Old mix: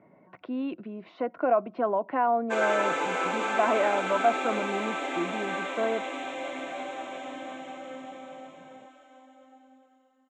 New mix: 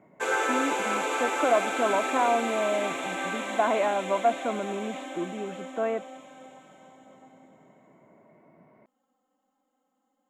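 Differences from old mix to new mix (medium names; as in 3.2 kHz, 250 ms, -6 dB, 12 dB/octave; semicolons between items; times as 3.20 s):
background: entry -2.30 s; master: remove distance through air 89 m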